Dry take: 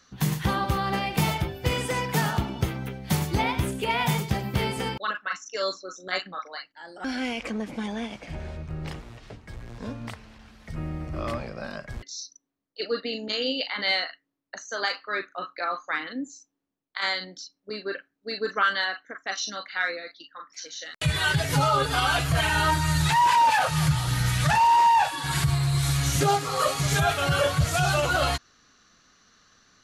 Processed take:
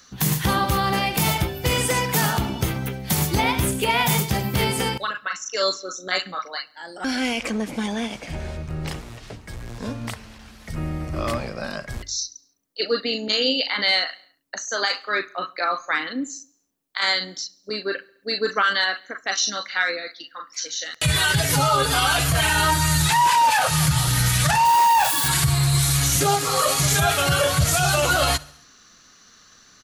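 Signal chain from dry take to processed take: 24.65–25.28 switching spikes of -30 dBFS; high shelf 5900 Hz +11 dB; de-hum 49.04 Hz, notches 3; 4.96–5.57 compressor, threshold -28 dBFS, peak gain reduction 5.5 dB; feedback echo 69 ms, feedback 56%, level -24 dB; limiter -15 dBFS, peak gain reduction 6 dB; gain +5 dB

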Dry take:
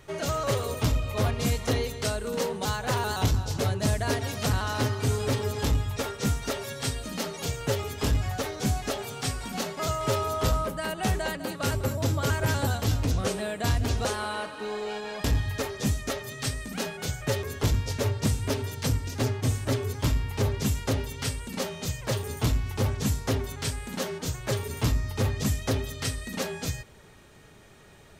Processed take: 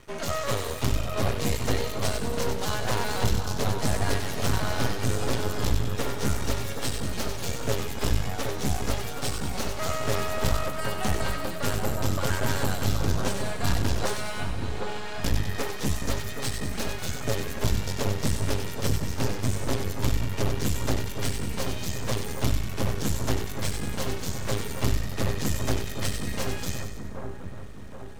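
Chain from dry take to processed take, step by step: 14.14–14.81 HPF 1100 Hz 6 dB/oct; half-wave rectifier; on a send: split-band echo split 1500 Hz, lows 0.774 s, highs 95 ms, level -6 dB; on the sum: gain +3 dB

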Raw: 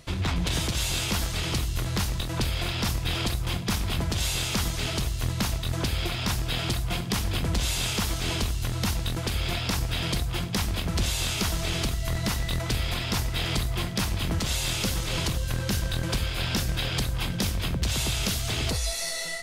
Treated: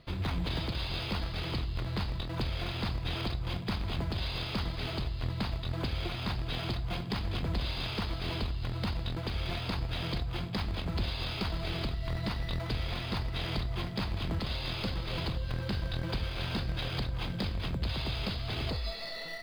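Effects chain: Chebyshev low-pass 5000 Hz, order 10; in parallel at -10 dB: sample-rate reducer 3800 Hz, jitter 0%; on the sum: gain -7 dB

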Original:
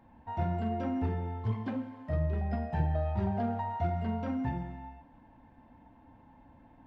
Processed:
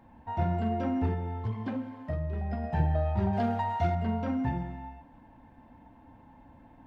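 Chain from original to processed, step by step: 1.13–2.64 compressor, threshold -32 dBFS, peak gain reduction 6.5 dB; 3.33–3.95 high shelf 2300 Hz +11 dB; gain +3 dB

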